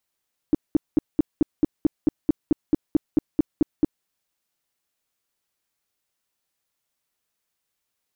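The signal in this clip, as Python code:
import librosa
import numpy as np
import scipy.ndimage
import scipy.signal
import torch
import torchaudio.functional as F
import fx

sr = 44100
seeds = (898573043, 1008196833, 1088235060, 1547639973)

y = fx.tone_burst(sr, hz=305.0, cycles=5, every_s=0.22, bursts=16, level_db=-12.5)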